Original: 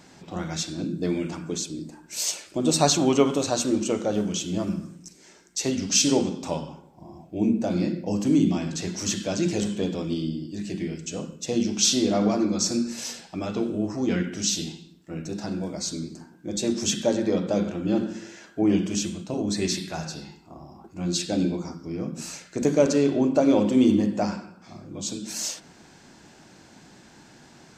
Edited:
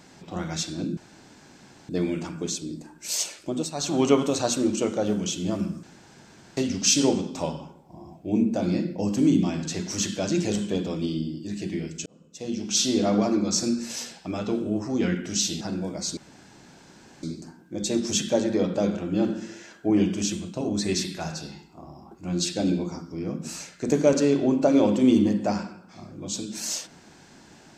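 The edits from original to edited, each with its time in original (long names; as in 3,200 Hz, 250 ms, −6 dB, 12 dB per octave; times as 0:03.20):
0:00.97: splice in room tone 0.92 s
0:02.49–0:03.13: duck −14.5 dB, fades 0.30 s
0:04.91–0:05.65: fill with room tone
0:11.14–0:12.09: fade in
0:14.69–0:15.40: remove
0:15.96: splice in room tone 1.06 s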